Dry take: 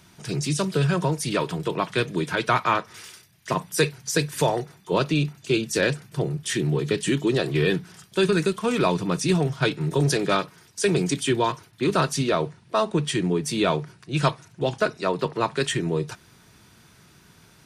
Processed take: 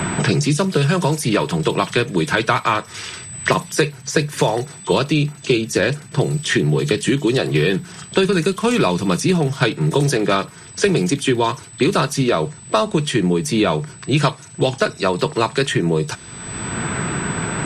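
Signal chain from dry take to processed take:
low-pass that shuts in the quiet parts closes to 2,700 Hz, open at −21 dBFS
steady tone 8,000 Hz −54 dBFS
multiband upward and downward compressor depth 100%
level +5 dB

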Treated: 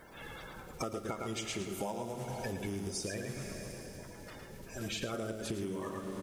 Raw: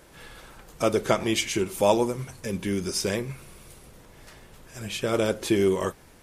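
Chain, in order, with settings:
spectral magnitudes quantised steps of 30 dB
single-tap delay 110 ms −5.5 dB
four-comb reverb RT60 3.4 s, combs from 32 ms, DRR 10 dB
downward compressor 12 to 1, threshold −33 dBFS, peak gain reduction 18.5 dB
bit reduction 11 bits
level −1.5 dB

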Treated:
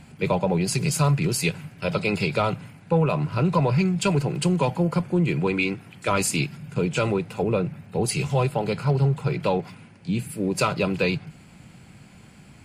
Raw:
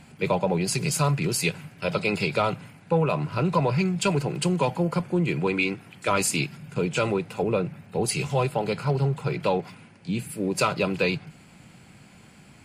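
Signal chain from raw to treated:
low-shelf EQ 160 Hz +6.5 dB

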